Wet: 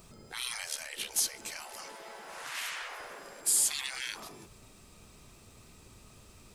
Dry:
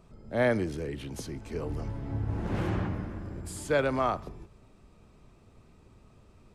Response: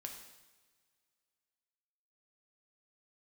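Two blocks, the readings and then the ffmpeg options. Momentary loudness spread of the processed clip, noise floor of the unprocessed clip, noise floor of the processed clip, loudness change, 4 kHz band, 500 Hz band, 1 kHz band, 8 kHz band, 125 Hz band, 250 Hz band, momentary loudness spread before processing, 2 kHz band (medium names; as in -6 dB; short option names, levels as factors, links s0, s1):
20 LU, -59 dBFS, -57 dBFS, -1.0 dB, +10.5 dB, -20.0 dB, -9.5 dB, +17.5 dB, under -20 dB, -22.0 dB, 12 LU, -2.5 dB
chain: -af "afftfilt=real='re*lt(hypot(re,im),0.0282)':imag='im*lt(hypot(re,im),0.0282)':win_size=1024:overlap=0.75,crystalizer=i=6.5:c=0"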